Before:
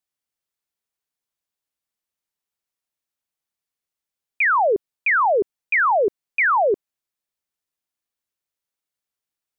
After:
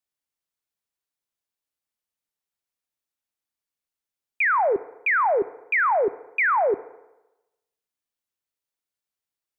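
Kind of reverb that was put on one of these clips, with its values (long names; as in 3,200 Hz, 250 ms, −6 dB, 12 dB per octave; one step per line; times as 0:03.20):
feedback delay network reverb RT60 1 s, low-frequency decay 0.85×, high-frequency decay 0.8×, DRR 15.5 dB
level −3 dB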